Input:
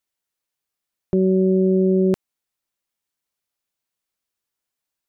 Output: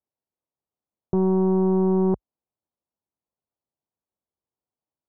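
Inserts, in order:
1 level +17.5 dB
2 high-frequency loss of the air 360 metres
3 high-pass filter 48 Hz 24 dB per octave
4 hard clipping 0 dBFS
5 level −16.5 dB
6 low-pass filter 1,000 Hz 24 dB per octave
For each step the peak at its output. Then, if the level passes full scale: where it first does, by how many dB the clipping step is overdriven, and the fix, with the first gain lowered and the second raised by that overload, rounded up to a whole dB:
+6.5, +6.0, +7.5, 0.0, −16.5, −15.5 dBFS
step 1, 7.5 dB
step 1 +9.5 dB, step 5 −8.5 dB

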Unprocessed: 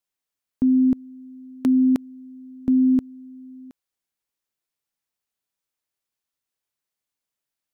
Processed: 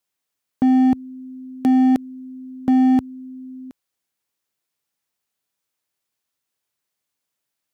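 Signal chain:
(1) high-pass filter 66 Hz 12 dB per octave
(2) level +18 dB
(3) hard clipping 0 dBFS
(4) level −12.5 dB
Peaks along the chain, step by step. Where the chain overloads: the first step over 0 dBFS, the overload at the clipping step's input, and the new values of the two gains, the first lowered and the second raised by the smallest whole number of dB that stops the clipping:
−12.5, +5.5, 0.0, −12.5 dBFS
step 2, 5.5 dB
step 2 +12 dB, step 4 −6.5 dB

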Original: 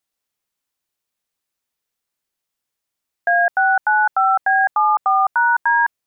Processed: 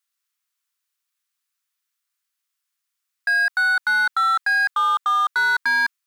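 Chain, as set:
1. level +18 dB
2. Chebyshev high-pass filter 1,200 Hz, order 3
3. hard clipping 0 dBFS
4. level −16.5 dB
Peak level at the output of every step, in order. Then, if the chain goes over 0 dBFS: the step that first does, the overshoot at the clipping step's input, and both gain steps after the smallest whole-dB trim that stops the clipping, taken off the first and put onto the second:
+9.0, +6.0, 0.0, −16.5 dBFS
step 1, 6.0 dB
step 1 +12 dB, step 4 −10.5 dB

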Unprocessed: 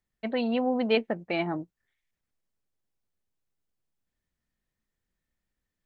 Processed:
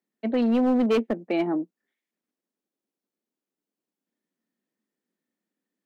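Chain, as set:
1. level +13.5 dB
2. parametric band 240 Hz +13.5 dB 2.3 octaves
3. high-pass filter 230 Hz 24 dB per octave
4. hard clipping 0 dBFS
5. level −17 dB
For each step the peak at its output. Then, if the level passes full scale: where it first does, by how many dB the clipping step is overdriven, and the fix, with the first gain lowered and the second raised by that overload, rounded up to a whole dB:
+2.5, +9.5, +7.5, 0.0, −17.0 dBFS
step 1, 7.5 dB
step 1 +5.5 dB, step 5 −9 dB

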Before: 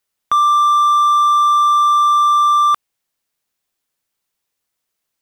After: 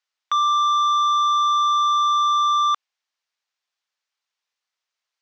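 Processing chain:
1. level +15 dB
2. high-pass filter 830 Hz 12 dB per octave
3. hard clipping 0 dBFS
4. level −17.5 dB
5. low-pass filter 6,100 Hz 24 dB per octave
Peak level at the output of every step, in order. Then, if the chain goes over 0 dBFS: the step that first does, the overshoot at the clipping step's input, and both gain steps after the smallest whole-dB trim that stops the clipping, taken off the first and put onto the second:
+7.5, +5.5, 0.0, −17.5, −17.0 dBFS
step 1, 5.5 dB
step 1 +9 dB, step 4 −11.5 dB

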